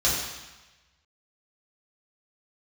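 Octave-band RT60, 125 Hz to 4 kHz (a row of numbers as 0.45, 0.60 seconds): 1.2, 1.1, 1.0, 1.2, 1.2, 1.2 seconds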